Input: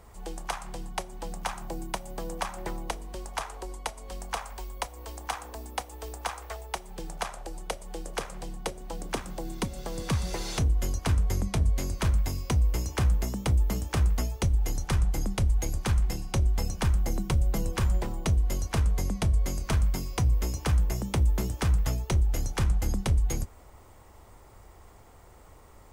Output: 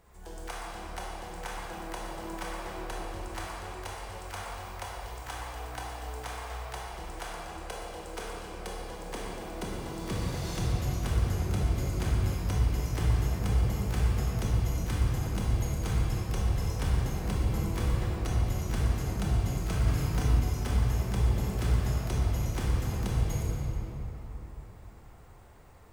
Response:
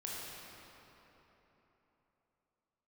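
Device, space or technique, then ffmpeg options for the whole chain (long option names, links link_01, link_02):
shimmer-style reverb: -filter_complex "[0:a]asplit=2[link_01][link_02];[link_02]asetrate=88200,aresample=44100,atempo=0.5,volume=-8dB[link_03];[link_01][link_03]amix=inputs=2:normalize=0[link_04];[1:a]atrim=start_sample=2205[link_05];[link_04][link_05]afir=irnorm=-1:irlink=0,asettb=1/sr,asplit=3[link_06][link_07][link_08];[link_06]atrim=end=19.834[link_09];[link_07]atrim=start=19.83:end=20.4,asetpts=PTS-STARTPTS,afade=type=in:duration=0.004:curve=qsin,afade=type=out:start_time=0.566:duration=0.004:curve=qsin,asplit=2[link_10][link_11];[link_11]adelay=37,volume=-3dB[link_12];[link_10][link_12]amix=inputs=2:normalize=0,atrim=end_sample=25137[link_13];[link_08]atrim=start=20.396[link_14];[link_09][link_13]acrossfade=duration=0.004:curve1=hsin:curve2=qsin[link_15];[link_15][link_14]acrossfade=duration=0.004:curve1=qsin:curve2=hsin,volume=-4dB"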